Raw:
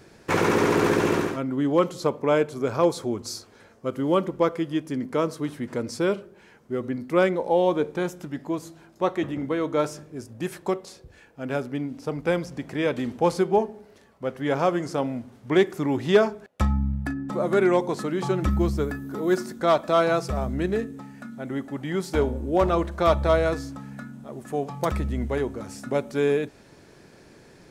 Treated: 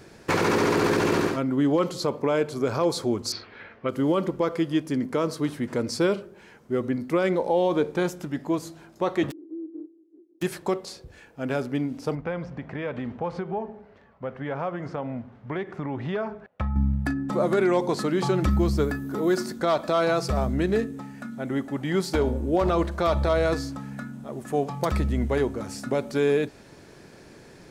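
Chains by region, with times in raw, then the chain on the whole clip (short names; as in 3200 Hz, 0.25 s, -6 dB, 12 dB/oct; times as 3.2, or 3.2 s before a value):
3.32–3.89 LPF 3600 Hz 24 dB/oct + bell 2100 Hz +11 dB 1.4 oct
9.3–10.41 spectral contrast lowered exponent 0.26 + Butterworth band-pass 330 Hz, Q 7.5
12.15–16.76 compressor 3:1, threshold -27 dBFS + LPF 2100 Hz + bell 330 Hz -7 dB 0.84 oct
whole clip: dynamic EQ 4500 Hz, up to +6 dB, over -56 dBFS, Q 4; limiter -16 dBFS; gain +2.5 dB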